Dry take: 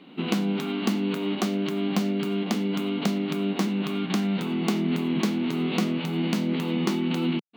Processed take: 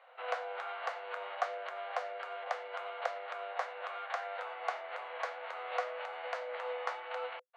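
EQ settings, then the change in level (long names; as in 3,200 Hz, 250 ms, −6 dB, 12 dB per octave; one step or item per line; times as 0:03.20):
Chebyshev high-pass with heavy ripple 490 Hz, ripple 6 dB
high-frequency loss of the air 78 metres
high shelf with overshoot 2,000 Hz −10 dB, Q 1.5
+1.5 dB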